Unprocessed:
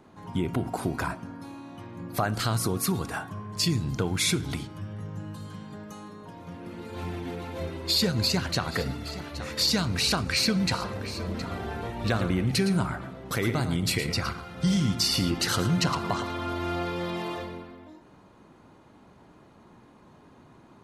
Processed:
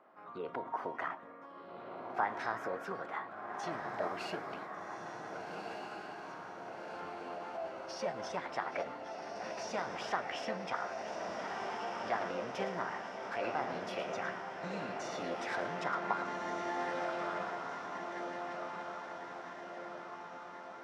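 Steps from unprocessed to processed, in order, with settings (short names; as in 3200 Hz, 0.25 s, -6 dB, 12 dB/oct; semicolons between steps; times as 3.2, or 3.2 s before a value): ladder band-pass 730 Hz, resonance 20%; diffused feedback echo 1.55 s, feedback 58%, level -4.5 dB; formant shift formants +4 st; gain +7 dB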